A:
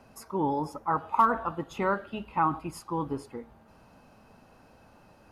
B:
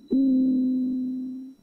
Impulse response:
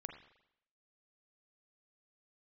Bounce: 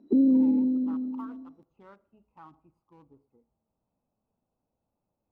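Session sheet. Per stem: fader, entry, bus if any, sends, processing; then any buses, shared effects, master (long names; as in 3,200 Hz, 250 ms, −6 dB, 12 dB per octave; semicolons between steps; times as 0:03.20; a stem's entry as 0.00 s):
−19.0 dB, 0.00 s, send −13 dB, adaptive Wiener filter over 25 samples
+3.0 dB, 0.00 s, no send, resonant band-pass 420 Hz, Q 0.83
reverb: on, RT60 0.80 s, pre-delay 38 ms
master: expander for the loud parts 1.5 to 1, over −32 dBFS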